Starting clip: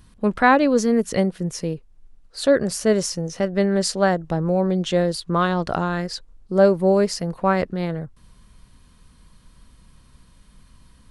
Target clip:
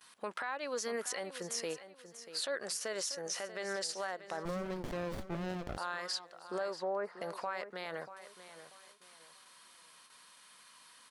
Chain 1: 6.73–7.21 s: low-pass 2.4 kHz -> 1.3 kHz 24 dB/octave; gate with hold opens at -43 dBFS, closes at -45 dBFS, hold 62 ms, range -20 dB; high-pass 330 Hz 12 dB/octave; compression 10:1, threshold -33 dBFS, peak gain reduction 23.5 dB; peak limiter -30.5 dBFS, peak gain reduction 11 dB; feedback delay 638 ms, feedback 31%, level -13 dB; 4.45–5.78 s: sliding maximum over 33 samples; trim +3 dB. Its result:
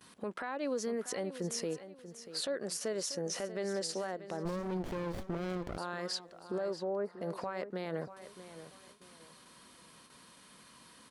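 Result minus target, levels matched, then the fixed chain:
250 Hz band +4.5 dB
6.73–7.21 s: low-pass 2.4 kHz -> 1.3 kHz 24 dB/octave; gate with hold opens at -43 dBFS, closes at -45 dBFS, hold 62 ms, range -20 dB; high-pass 890 Hz 12 dB/octave; compression 10:1, threshold -33 dBFS, peak gain reduction 21 dB; peak limiter -30.5 dBFS, peak gain reduction 11.5 dB; feedback delay 638 ms, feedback 31%, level -13 dB; 4.45–5.78 s: sliding maximum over 33 samples; trim +3 dB

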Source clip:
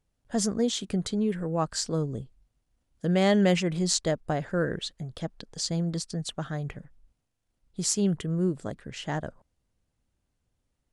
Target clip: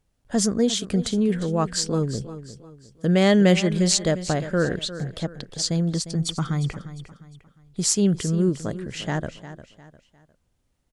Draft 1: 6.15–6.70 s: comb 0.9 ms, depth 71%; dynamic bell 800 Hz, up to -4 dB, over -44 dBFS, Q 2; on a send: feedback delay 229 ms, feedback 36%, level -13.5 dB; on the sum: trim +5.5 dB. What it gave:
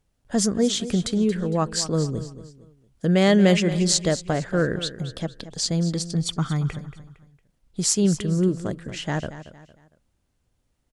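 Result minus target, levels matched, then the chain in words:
echo 124 ms early
6.15–6.70 s: comb 0.9 ms, depth 71%; dynamic bell 800 Hz, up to -4 dB, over -44 dBFS, Q 2; on a send: feedback delay 353 ms, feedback 36%, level -13.5 dB; on the sum: trim +5.5 dB

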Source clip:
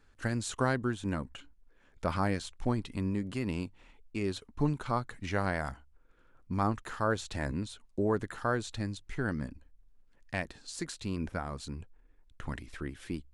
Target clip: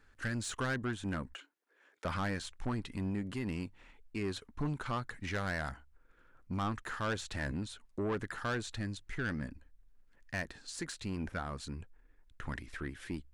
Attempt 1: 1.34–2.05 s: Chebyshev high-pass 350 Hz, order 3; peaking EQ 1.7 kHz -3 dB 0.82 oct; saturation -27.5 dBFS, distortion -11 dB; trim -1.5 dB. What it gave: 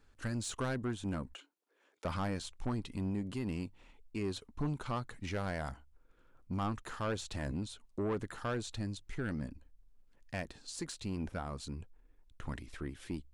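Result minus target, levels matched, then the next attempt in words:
2 kHz band -5.5 dB
1.34–2.05 s: Chebyshev high-pass 350 Hz, order 3; peaking EQ 1.7 kHz +5.5 dB 0.82 oct; saturation -27.5 dBFS, distortion -10 dB; trim -1.5 dB

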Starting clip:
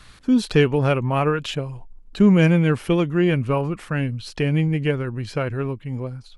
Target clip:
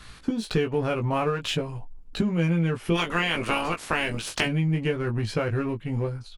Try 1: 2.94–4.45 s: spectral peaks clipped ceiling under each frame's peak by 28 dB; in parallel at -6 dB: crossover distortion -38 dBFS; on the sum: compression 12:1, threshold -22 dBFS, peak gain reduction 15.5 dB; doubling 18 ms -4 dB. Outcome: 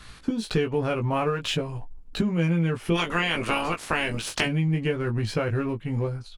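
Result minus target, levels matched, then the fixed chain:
crossover distortion: distortion -6 dB
2.94–4.45 s: spectral peaks clipped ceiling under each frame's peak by 28 dB; in parallel at -6 dB: crossover distortion -31 dBFS; on the sum: compression 12:1, threshold -22 dBFS, peak gain reduction 15.5 dB; doubling 18 ms -4 dB

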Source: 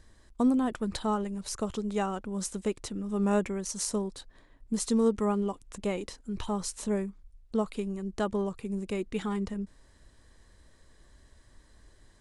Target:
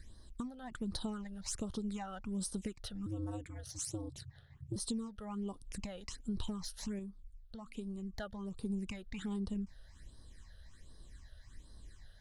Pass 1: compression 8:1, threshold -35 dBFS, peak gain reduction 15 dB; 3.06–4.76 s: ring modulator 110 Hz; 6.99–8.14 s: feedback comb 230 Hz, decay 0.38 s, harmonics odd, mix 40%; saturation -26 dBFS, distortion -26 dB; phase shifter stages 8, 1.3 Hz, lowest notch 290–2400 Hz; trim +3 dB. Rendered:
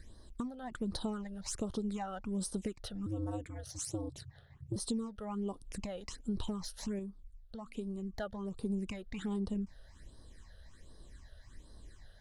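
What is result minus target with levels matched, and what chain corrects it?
500 Hz band +3.0 dB
compression 8:1, threshold -35 dBFS, peak gain reduction 15 dB; peaking EQ 520 Hz -6 dB 2.2 oct; 3.06–4.76 s: ring modulator 110 Hz; 6.99–8.14 s: feedback comb 230 Hz, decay 0.38 s, harmonics odd, mix 40%; saturation -26 dBFS, distortion -30 dB; phase shifter stages 8, 1.3 Hz, lowest notch 290–2400 Hz; trim +3 dB

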